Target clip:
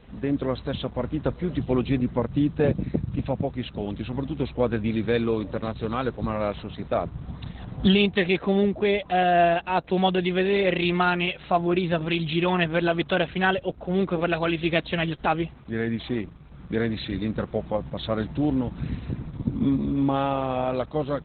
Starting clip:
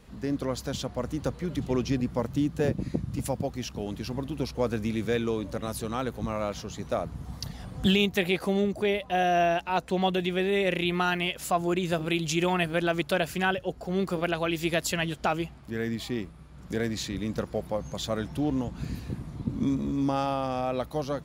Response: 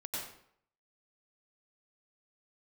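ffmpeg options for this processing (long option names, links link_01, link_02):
-filter_complex "[0:a]asplit=3[link_01][link_02][link_03];[link_01]afade=type=out:start_time=11.83:duration=0.02[link_04];[link_02]adynamicequalizer=threshold=0.0158:dfrequency=370:dqfactor=1.8:tfrequency=370:tqfactor=1.8:attack=5:release=100:ratio=0.375:range=2:mode=cutabove:tftype=bell,afade=type=in:start_time=11.83:duration=0.02,afade=type=out:start_time=12.49:duration=0.02[link_05];[link_03]afade=type=in:start_time=12.49:duration=0.02[link_06];[link_04][link_05][link_06]amix=inputs=3:normalize=0,volume=4.5dB" -ar 48000 -c:a libopus -b:a 8k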